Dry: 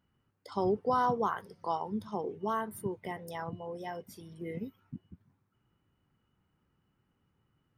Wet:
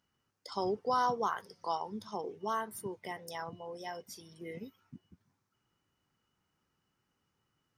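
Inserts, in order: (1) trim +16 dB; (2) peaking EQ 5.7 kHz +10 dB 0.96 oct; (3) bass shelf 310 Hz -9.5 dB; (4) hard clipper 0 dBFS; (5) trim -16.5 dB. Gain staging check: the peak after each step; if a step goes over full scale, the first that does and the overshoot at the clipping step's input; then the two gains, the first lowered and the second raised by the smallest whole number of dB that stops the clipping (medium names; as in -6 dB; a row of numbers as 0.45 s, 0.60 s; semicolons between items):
-2.0 dBFS, -2.0 dBFS, -2.5 dBFS, -2.5 dBFS, -19.0 dBFS; nothing clips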